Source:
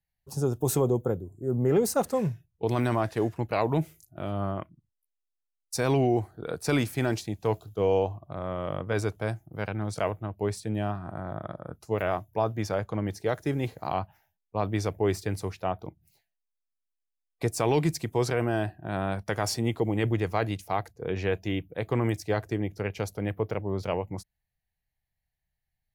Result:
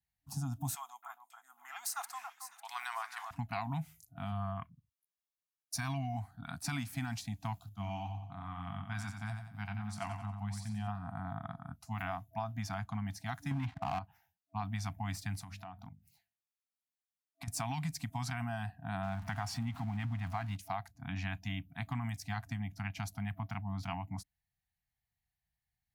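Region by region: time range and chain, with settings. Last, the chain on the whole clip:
0.75–3.31 s: high-pass 970 Hz 24 dB/octave + echo whose repeats swap between lows and highs 275 ms, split 2 kHz, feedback 54%, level -7.5 dB
4.32–6.14 s: band-stop 7.9 kHz, Q 6.3 + comb 1.8 ms, depth 38%
7.69–10.88 s: feedback comb 100 Hz, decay 0.19 s + feedback delay 90 ms, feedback 42%, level -7 dB
13.51–13.99 s: low-pass 3.2 kHz 24 dB/octave + waveshaping leveller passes 3
15.39–17.48 s: hum notches 50/100/150/200/250/300/350/400/450 Hz + compression 12:1, threshold -36 dBFS
19.03–20.56 s: jump at every zero crossing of -36 dBFS + treble shelf 4.1 kHz -11 dB
whole clip: FFT band-reject 290–660 Hz; high-pass 42 Hz; compression, threshold -30 dBFS; trim -3.5 dB

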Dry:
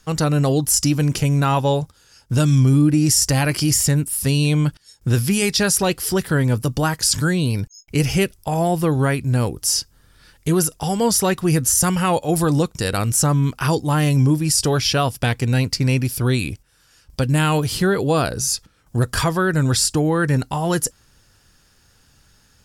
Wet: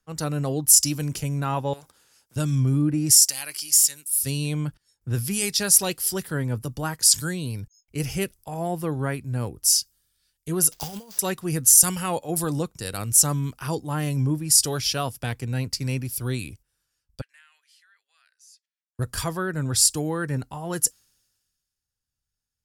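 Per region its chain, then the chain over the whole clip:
1.73–2.36 s: bass shelf 120 Hz -10.5 dB + compression 3:1, threshold -27 dBFS + spectrum-flattening compressor 2:1
3.11–4.16 s: high-pass 1.3 kHz 6 dB/octave + tape noise reduction on one side only encoder only
10.72–11.19 s: peaking EQ 4.7 kHz +9 dB 0.26 oct + compressor with a negative ratio -24 dBFS, ratio -0.5 + sample-rate reducer 11 kHz, jitter 20%
17.21–18.99 s: ladder high-pass 1.6 kHz, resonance 55% + distance through air 53 m + compression 2.5:1, threshold -35 dBFS
whole clip: treble shelf 6.9 kHz +10.5 dB; three bands expanded up and down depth 70%; trim -9 dB

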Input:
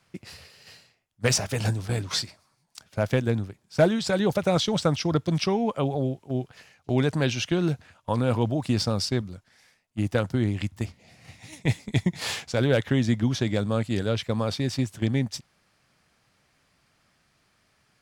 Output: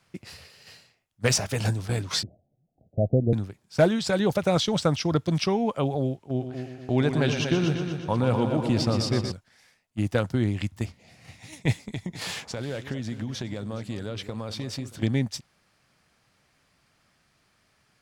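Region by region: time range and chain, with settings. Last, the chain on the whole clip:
2.23–3.33 s: steep low-pass 740 Hz 96 dB/octave + bass shelf 230 Hz +4 dB
6.16–9.32 s: treble shelf 6.4 kHz -7 dB + multi-head delay 120 ms, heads first and second, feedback 51%, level -9 dB
11.86–15.03 s: compression 5:1, threshold -29 dBFS + echo whose repeats swap between lows and highs 209 ms, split 1.2 kHz, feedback 57%, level -11.5 dB
whole clip: none

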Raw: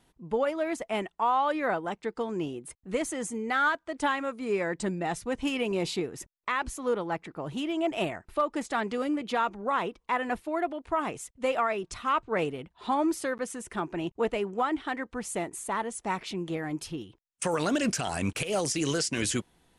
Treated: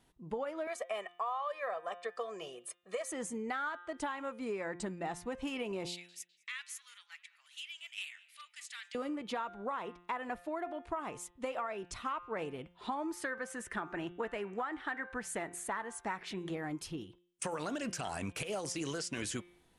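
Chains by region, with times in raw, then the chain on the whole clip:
0.67–3.12 s: high-pass 480 Hz + comb 1.7 ms, depth 99%
5.88–8.95 s: inverse Chebyshev high-pass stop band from 360 Hz, stop band 80 dB + filtered feedback delay 205 ms, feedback 67%, low-pass 3.4 kHz, level -19.5 dB
13.13–16.51 s: peaking EQ 1.7 kHz +10 dB 0.61 oct + de-hum 387.2 Hz, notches 7
whole clip: de-hum 175.7 Hz, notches 22; dynamic bell 1 kHz, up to +4 dB, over -38 dBFS, Q 0.77; compression, threshold -31 dBFS; trim -4 dB

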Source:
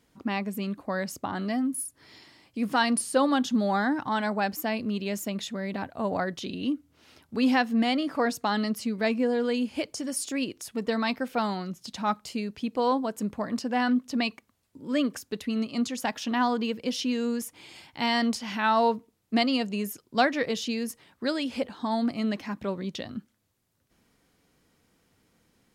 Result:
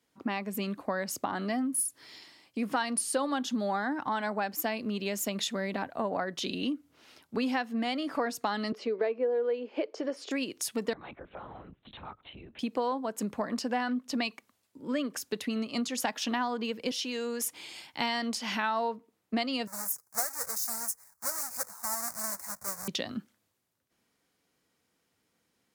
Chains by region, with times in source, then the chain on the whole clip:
8.72–10.31 s: resonant high-pass 420 Hz, resonance Q 3.9 + distance through air 210 m
10.93–12.59 s: LPC vocoder at 8 kHz whisper + compression 8:1, threshold -41 dBFS + distance through air 110 m
16.91–17.44 s: high-pass 320 Hz + compression 3:1, threshold -33 dBFS
19.67–22.88 s: square wave that keeps the level + Butterworth band-stop 3.1 kHz, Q 0.59 + amplifier tone stack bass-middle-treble 10-0-10
whole clip: high-pass 310 Hz 6 dB/octave; compression 6:1, threshold -35 dBFS; three bands expanded up and down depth 40%; trim +6.5 dB

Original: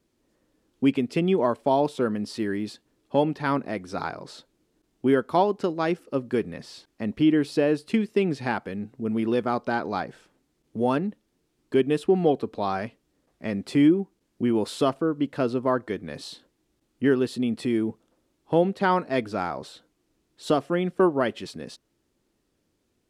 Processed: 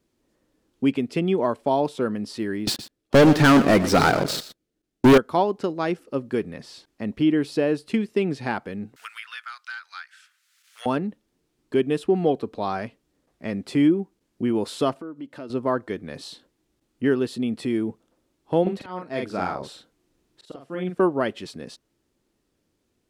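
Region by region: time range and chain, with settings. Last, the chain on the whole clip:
2.67–5.18 s: peaking EQ 970 Hz -8.5 dB 0.47 oct + waveshaping leveller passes 5 + delay 118 ms -14 dB
8.96–10.86 s: elliptic high-pass 1.4 kHz, stop band 80 dB + three bands compressed up and down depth 100%
14.95–15.50 s: high-pass 88 Hz + comb 3.3 ms, depth 34% + compression 2:1, threshold -43 dBFS
18.62–20.95 s: slow attack 576 ms + doubling 44 ms -3 dB
whole clip: none

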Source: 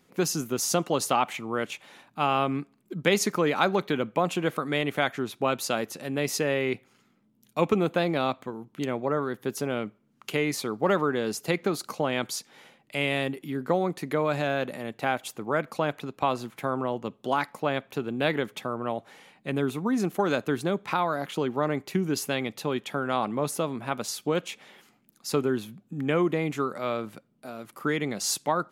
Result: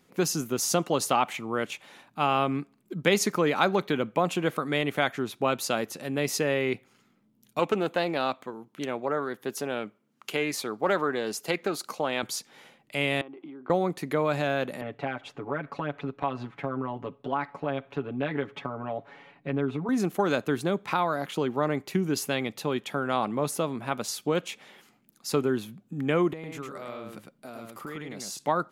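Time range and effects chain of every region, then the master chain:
7.59–12.23 s: high-pass 310 Hz 6 dB/octave + loudspeaker Doppler distortion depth 0.12 ms
13.21–13.70 s: compression, threshold -38 dBFS + cabinet simulation 300–2800 Hz, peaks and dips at 330 Hz +9 dB, 470 Hz -6 dB, 780 Hz +4 dB, 1.1 kHz +5 dB, 1.8 kHz -10 dB, 2.7 kHz -5 dB
14.81–19.89 s: low-pass 2.5 kHz + compression 2:1, threshold -33 dBFS + comb 7.1 ms, depth 94%
26.33–28.39 s: compression 5:1, threshold -36 dBFS + delay 105 ms -3.5 dB
whole clip: none

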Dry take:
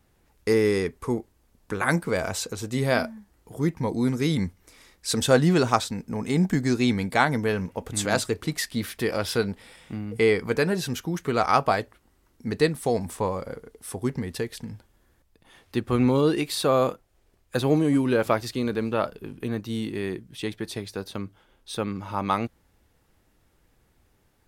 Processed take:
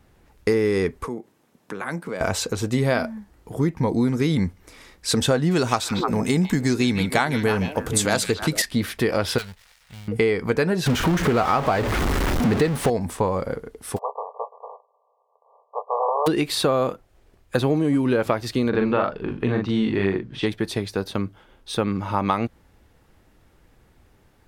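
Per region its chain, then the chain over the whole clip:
1.06–2.21 s: high-pass 140 Hz 24 dB/octave + band-stop 4.6 kHz, Q 22 + compression 2:1, threshold -44 dBFS
5.51–8.62 s: treble shelf 4.3 kHz +10.5 dB + repeats whose band climbs or falls 153 ms, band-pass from 2.9 kHz, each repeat -1.4 oct, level -7 dB
9.38–10.08 s: dead-time distortion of 0.2 ms + amplifier tone stack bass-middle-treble 10-0-10
10.86–12.90 s: jump at every zero crossing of -22 dBFS + treble shelf 5.2 kHz -8 dB
13.96–16.26 s: spectral contrast reduction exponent 0.19 + brick-wall FIR band-pass 420–1200 Hz + doubling 12 ms -10 dB
18.69–20.46 s: low-pass 4.4 kHz + peaking EQ 1.2 kHz +3.5 dB 1.7 oct + doubling 41 ms -3.5 dB
whole clip: treble shelf 4.6 kHz -7 dB; compression 6:1, threshold -25 dBFS; trim +8 dB

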